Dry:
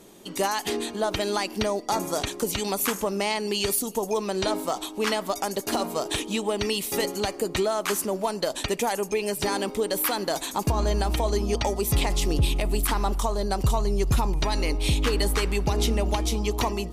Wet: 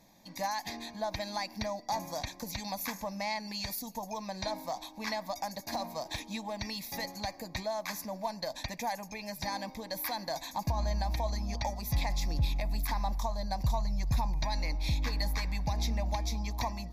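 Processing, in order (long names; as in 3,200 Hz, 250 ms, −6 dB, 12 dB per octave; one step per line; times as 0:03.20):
phaser with its sweep stopped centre 2,000 Hz, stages 8
level −6 dB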